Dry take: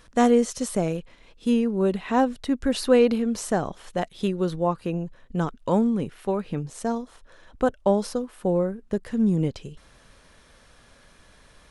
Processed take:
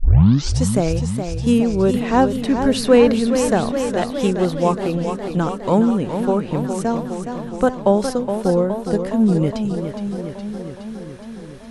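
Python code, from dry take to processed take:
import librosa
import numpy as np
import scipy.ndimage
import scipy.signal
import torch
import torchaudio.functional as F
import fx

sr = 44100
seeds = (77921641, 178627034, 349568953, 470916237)

y = fx.tape_start_head(x, sr, length_s=0.62)
y = fx.echo_warbled(y, sr, ms=415, feedback_pct=71, rate_hz=2.8, cents=101, wet_db=-8.0)
y = F.gain(torch.from_numpy(y), 5.5).numpy()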